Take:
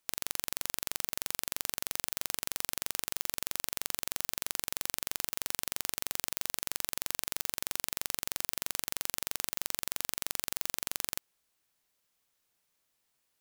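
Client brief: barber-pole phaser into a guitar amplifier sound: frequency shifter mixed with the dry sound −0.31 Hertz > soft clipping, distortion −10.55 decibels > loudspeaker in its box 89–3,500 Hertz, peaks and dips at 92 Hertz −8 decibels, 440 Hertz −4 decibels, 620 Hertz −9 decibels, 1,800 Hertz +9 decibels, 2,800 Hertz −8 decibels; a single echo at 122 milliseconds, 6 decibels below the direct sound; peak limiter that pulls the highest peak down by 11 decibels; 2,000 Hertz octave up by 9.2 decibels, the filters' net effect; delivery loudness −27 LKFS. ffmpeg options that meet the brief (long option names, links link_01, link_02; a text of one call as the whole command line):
ffmpeg -i in.wav -filter_complex "[0:a]equalizer=frequency=2000:width_type=o:gain=6.5,alimiter=limit=-14.5dB:level=0:latency=1,aecho=1:1:122:0.501,asplit=2[link_01][link_02];[link_02]afreqshift=-0.31[link_03];[link_01][link_03]amix=inputs=2:normalize=1,asoftclip=threshold=-27dB,highpass=89,equalizer=frequency=92:width_type=q:width=4:gain=-8,equalizer=frequency=440:width_type=q:width=4:gain=-4,equalizer=frequency=620:width_type=q:width=4:gain=-9,equalizer=frequency=1800:width_type=q:width=4:gain=9,equalizer=frequency=2800:width_type=q:width=4:gain=-8,lowpass=frequency=3500:width=0.5412,lowpass=frequency=3500:width=1.3066,volume=25dB" out.wav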